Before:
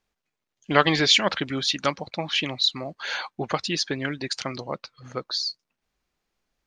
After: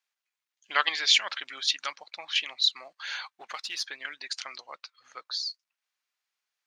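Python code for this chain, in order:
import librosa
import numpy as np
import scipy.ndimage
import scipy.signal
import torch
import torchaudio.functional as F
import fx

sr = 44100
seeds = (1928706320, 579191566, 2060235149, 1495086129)

p1 = fx.halfwave_gain(x, sr, db=-3.0, at=(3.39, 3.86))
p2 = scipy.signal.sosfilt(scipy.signal.butter(2, 1300.0, 'highpass', fs=sr, output='sos'), p1)
p3 = fx.level_steps(p2, sr, step_db=23)
p4 = p2 + F.gain(torch.from_numpy(p3), -1.5).numpy()
y = F.gain(torch.from_numpy(p4), -5.5).numpy()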